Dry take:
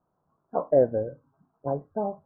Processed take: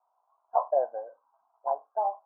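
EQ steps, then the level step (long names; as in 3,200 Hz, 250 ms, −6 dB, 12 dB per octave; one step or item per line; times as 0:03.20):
four-pole ladder high-pass 650 Hz, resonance 65%
linear-phase brick-wall low-pass 1,700 Hz
parametric band 990 Hz +13 dB 0.74 octaves
0.0 dB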